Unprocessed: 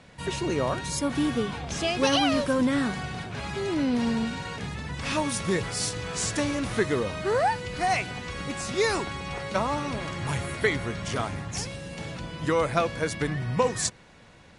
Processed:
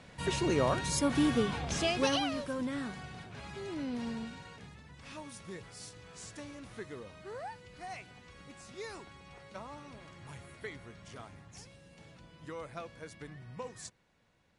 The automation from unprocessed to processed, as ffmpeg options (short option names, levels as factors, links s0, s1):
-af "volume=0.794,afade=t=out:st=1.72:d=0.6:silence=0.316228,afade=t=out:st=4.1:d=0.75:silence=0.446684"